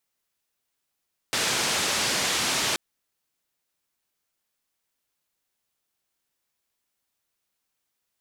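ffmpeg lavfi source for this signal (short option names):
-f lavfi -i "anoisesrc=c=white:d=1.43:r=44100:seed=1,highpass=f=99,lowpass=f=6500,volume=-15.5dB"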